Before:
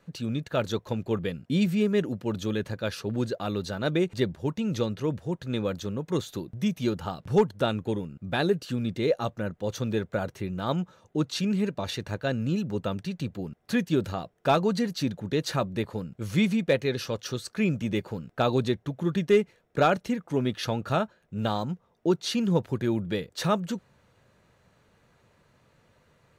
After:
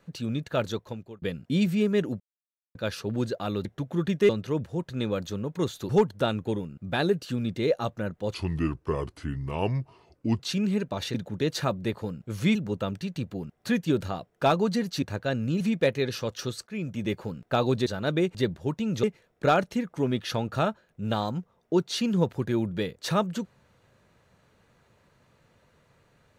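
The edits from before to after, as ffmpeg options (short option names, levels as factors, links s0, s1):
-filter_complex "[0:a]asplit=16[s0][s1][s2][s3][s4][s5][s6][s7][s8][s9][s10][s11][s12][s13][s14][s15];[s0]atrim=end=1.22,asetpts=PTS-STARTPTS,afade=t=out:st=0.6:d=0.62[s16];[s1]atrim=start=1.22:end=2.2,asetpts=PTS-STARTPTS,afade=t=in:d=0.004:c=hsin,afade=t=out:st=0.976:d=0.004:c=hsin[s17];[s2]atrim=start=2.2:end=2.75,asetpts=PTS-STARTPTS,volume=0[s18];[s3]atrim=start=2.75:end=3.652,asetpts=PTS-STARTPTS,afade=t=in:d=0.004:c=hsin[s19];[s4]atrim=start=18.728:end=19.372[s20];[s5]atrim=start=4.818:end=6.422[s21];[s6]atrim=start=7.288:end=9.744[s22];[s7]atrim=start=9.74:end=11.26,asetpts=PTS-STARTPTS,asetrate=32634,aresample=44100[s23];[s8]atrim=start=11.256:end=12.012[s24];[s9]atrim=start=15.058:end=16.472[s25];[s10]atrim=start=12.588:end=15.062[s26];[s11]atrim=start=12.008:end=12.592[s27];[s12]atrim=start=16.468:end=17.53,asetpts=PTS-STARTPTS,afade=t=out:st=1.058:d=0.004:c=hsin:silence=0.199526[s28];[s13]atrim=start=17.53:end=18.732,asetpts=PTS-STARTPTS,afade=t=in:d=0.48:silence=0.199526[s29];[s14]atrim=start=3.648:end=4.822[s30];[s15]atrim=start=19.368[s31];[s16][s17][s18][s19]concat=n=4:v=0:a=1[s32];[s32][s20]acrossfade=d=0.004:c1=hsin:c2=hsin[s33];[s33][s21]acrossfade=d=0.004:c1=hsin:c2=hsin[s34];[s34][s22]acrossfade=d=0.004:c1=hsin:c2=hsin[s35];[s35][s23]acrossfade=d=0.004:c1=hsin:c2=hsin[s36];[s36][s24]acrossfade=d=0.004:c1=hsin:c2=hsin[s37];[s37][s25]acrossfade=d=0.004:c1=hsin:c2=hsin[s38];[s38][s26]acrossfade=d=0.004:c1=hsin:c2=hsin[s39];[s39][s27]acrossfade=d=0.004:c1=hsin:c2=hsin[s40];[s28][s29]concat=n=2:v=0:a=1[s41];[s40][s41]acrossfade=d=0.004:c1=hsin:c2=hsin[s42];[s42][s30]acrossfade=d=0.004:c1=hsin:c2=hsin[s43];[s43][s31]acrossfade=d=0.004:c1=hsin:c2=hsin"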